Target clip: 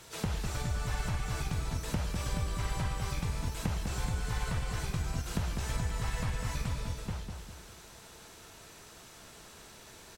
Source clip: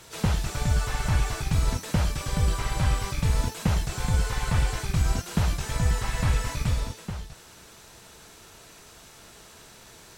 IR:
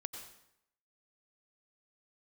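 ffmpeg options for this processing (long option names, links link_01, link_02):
-filter_complex "[0:a]acompressor=threshold=-27dB:ratio=4,asplit=2[link_01][link_02];[link_02]adelay=200,lowpass=frequency=3300:poles=1,volume=-5.5dB,asplit=2[link_03][link_04];[link_04]adelay=200,lowpass=frequency=3300:poles=1,volume=0.4,asplit=2[link_05][link_06];[link_06]adelay=200,lowpass=frequency=3300:poles=1,volume=0.4,asplit=2[link_07][link_08];[link_08]adelay=200,lowpass=frequency=3300:poles=1,volume=0.4,asplit=2[link_09][link_10];[link_10]adelay=200,lowpass=frequency=3300:poles=1,volume=0.4[link_11];[link_01][link_03][link_05][link_07][link_09][link_11]amix=inputs=6:normalize=0,volume=-3.5dB"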